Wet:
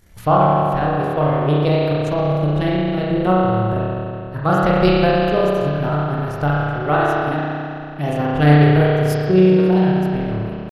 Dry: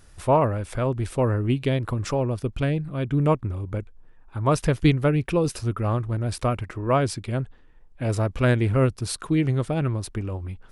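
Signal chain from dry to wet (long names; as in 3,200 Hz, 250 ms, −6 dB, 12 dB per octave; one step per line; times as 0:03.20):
transient designer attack +6 dB, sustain −10 dB
spring reverb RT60 2.7 s, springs 32 ms, chirp 30 ms, DRR −6.5 dB
pitch shifter +3 semitones
level −2.5 dB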